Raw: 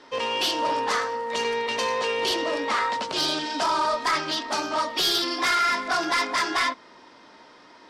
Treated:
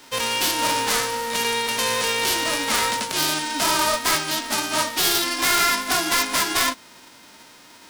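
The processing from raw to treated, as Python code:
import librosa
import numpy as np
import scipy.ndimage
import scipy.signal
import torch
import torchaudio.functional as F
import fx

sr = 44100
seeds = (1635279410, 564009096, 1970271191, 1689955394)

y = fx.envelope_flatten(x, sr, power=0.3)
y = y * librosa.db_to_amplitude(3.0)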